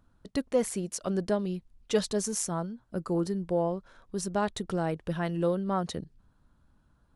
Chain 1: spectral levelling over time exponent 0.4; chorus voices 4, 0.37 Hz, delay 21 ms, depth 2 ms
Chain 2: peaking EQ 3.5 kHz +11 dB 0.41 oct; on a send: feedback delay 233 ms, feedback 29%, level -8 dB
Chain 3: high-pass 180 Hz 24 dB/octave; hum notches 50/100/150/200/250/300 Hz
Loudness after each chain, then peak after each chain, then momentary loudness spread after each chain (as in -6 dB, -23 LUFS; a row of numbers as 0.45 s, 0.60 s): -29.0 LUFS, -30.5 LUFS, -32.0 LUFS; -12.5 dBFS, -12.5 dBFS, -13.0 dBFS; 13 LU, 7 LU, 9 LU